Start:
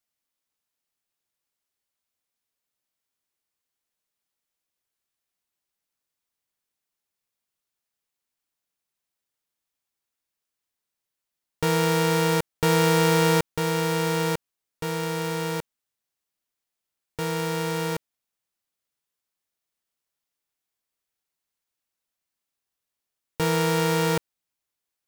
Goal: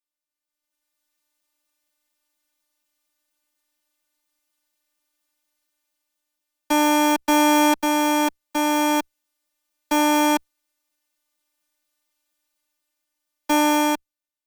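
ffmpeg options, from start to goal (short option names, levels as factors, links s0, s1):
-filter_complex "[0:a]afreqshift=18,dynaudnorm=f=210:g=13:m=5.96,afftfilt=real='hypot(re,im)*cos(PI*b)':imag='0':win_size=1024:overlap=0.75,asplit=2[s0][s1];[s1]alimiter=limit=0.531:level=0:latency=1,volume=0.794[s2];[s0][s2]amix=inputs=2:normalize=0,asetrate=76440,aresample=44100,volume=0.501"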